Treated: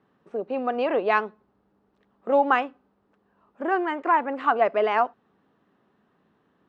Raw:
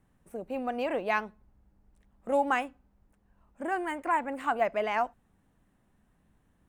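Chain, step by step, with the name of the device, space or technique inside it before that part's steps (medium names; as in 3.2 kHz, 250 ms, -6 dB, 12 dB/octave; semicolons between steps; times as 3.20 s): kitchen radio (cabinet simulation 210–4500 Hz, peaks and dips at 410 Hz +7 dB, 1.2 kHz +5 dB, 2.2 kHz -4 dB); trim +5.5 dB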